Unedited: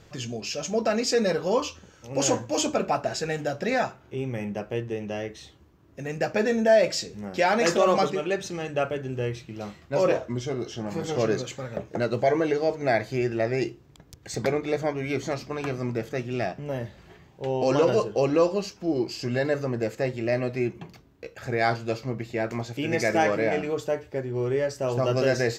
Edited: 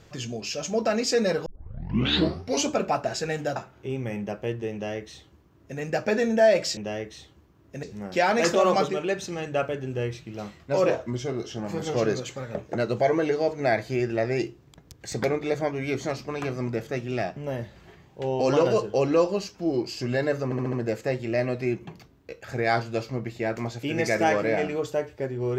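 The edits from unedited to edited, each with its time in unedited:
1.46 tape start 1.23 s
3.56–3.84 cut
5.01–6.07 copy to 7.05
19.67 stutter 0.07 s, 5 plays

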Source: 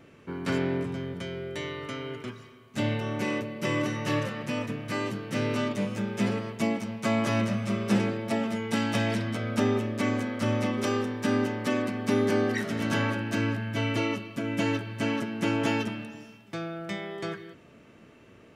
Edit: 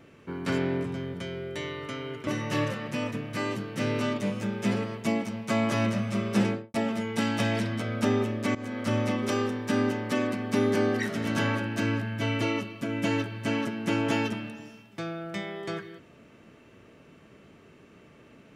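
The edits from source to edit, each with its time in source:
2.27–3.82 cut
8.01–8.29 studio fade out
10.1–10.35 fade in, from -16.5 dB

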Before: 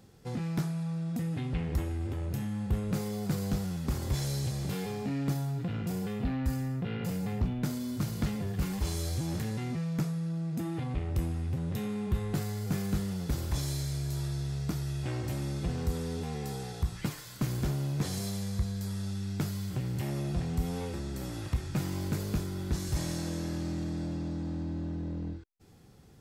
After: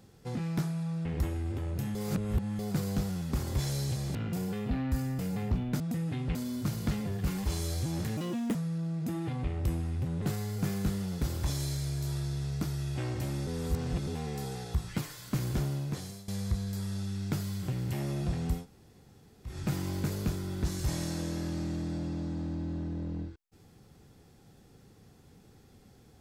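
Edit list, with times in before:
1.05–1.6 move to 7.7
2.5–3.14 reverse
4.7–5.69 cut
6.73–7.09 cut
9.52–10.06 speed 142%
11.73–12.3 cut
15.55–16.15 reverse
17.74–18.36 fade out, to -18 dB
20.67–21.59 room tone, crossfade 0.16 s

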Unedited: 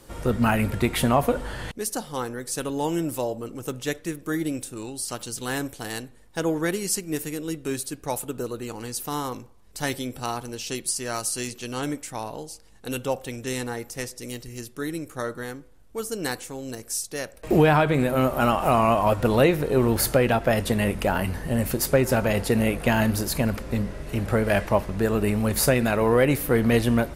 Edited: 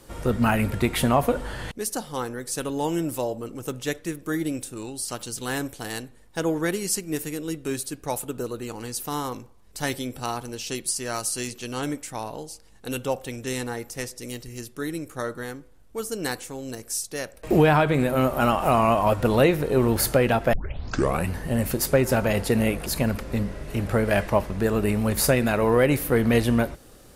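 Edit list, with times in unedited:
20.53 tape start 0.76 s
22.86–23.25 cut

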